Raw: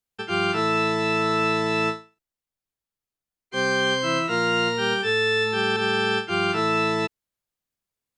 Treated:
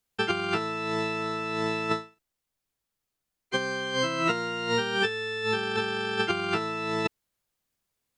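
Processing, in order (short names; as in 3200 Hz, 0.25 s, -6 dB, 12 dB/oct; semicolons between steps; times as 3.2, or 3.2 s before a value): negative-ratio compressor -27 dBFS, ratio -0.5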